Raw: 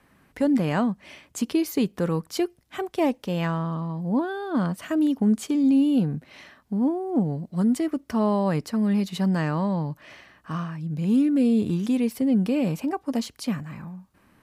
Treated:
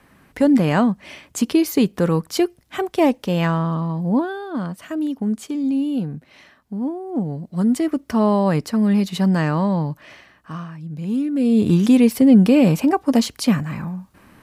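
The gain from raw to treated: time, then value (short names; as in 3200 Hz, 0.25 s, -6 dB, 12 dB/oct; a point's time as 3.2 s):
4.07 s +6.5 dB
4.57 s -1.5 dB
7.02 s -1.5 dB
7.9 s +5.5 dB
9.84 s +5.5 dB
10.59 s -1.5 dB
11.3 s -1.5 dB
11.73 s +10 dB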